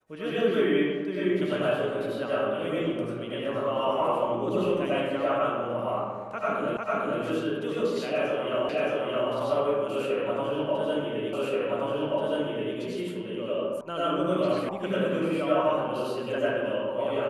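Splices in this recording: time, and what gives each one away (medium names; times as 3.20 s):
6.77 s: repeat of the last 0.45 s
8.69 s: repeat of the last 0.62 s
11.33 s: repeat of the last 1.43 s
13.81 s: sound stops dead
14.69 s: sound stops dead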